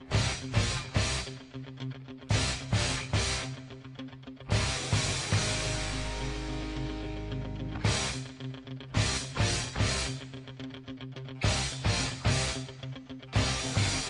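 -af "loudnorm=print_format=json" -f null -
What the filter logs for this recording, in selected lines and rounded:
"input_i" : "-30.9",
"input_tp" : "-14.7",
"input_lra" : "1.9",
"input_thresh" : "-41.6",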